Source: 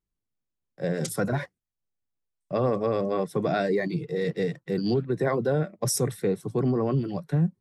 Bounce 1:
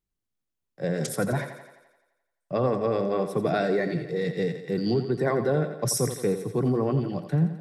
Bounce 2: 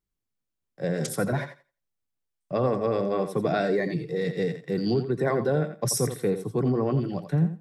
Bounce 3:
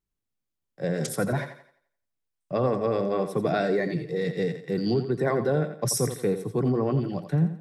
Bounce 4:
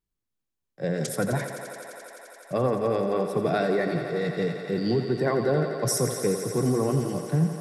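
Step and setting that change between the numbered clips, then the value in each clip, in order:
thinning echo, feedback: 60, 17, 38, 90%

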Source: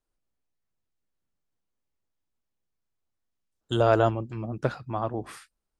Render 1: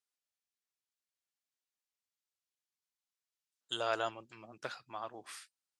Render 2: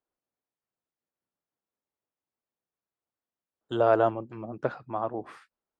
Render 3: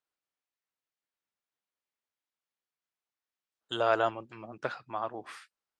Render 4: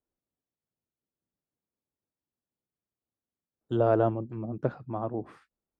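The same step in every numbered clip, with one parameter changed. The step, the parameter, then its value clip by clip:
band-pass, frequency: 5700, 700, 2100, 280 Hz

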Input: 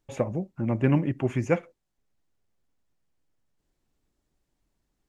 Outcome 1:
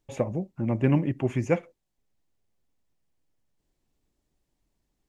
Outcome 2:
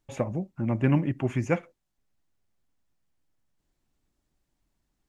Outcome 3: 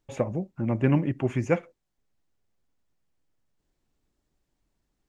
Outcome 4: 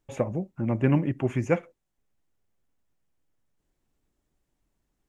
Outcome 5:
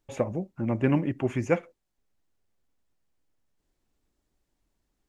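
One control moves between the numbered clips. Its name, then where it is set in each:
bell, frequency: 1400, 450, 12000, 4500, 140 Hz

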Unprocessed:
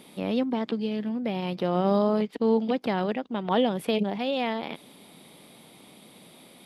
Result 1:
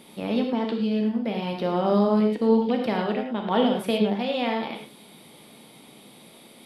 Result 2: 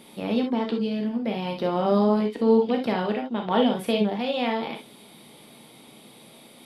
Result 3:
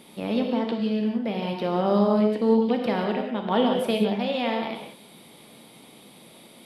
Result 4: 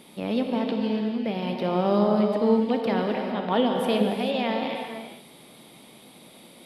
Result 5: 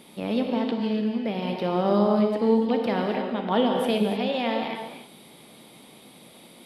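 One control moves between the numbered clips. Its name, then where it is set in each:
non-linear reverb, gate: 140, 90, 210, 480, 330 ms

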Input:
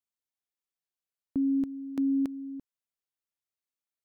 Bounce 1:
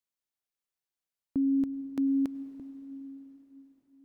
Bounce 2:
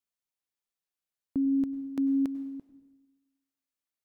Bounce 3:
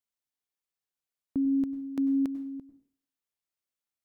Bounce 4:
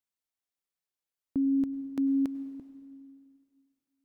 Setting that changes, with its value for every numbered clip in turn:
plate-style reverb, RT60: 5, 1.1, 0.51, 2.3 s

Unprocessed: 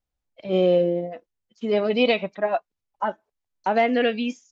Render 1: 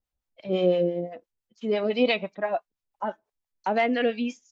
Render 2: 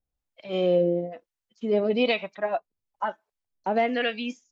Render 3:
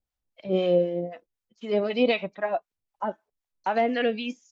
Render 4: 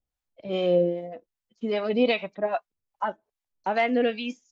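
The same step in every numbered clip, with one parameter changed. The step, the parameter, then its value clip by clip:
harmonic tremolo, rate: 5.9, 1.1, 3.9, 2.5 Hz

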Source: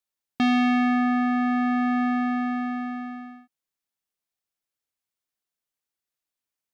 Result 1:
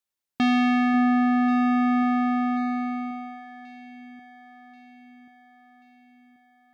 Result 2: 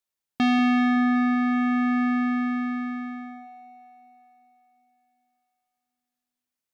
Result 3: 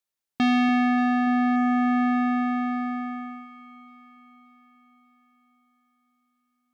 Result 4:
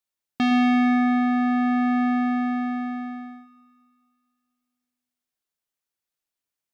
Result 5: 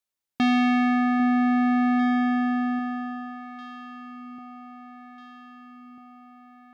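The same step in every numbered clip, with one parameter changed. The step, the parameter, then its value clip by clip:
echo with dull and thin repeats by turns, time: 0.542, 0.189, 0.29, 0.113, 0.797 s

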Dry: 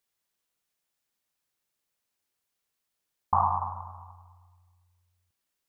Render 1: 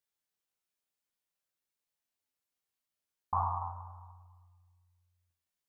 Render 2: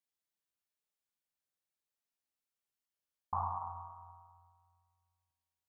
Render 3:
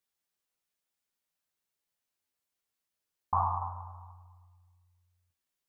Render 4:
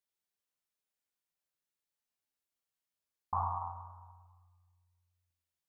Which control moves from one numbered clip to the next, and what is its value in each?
resonator, decay: 0.39, 1.9, 0.16, 0.81 s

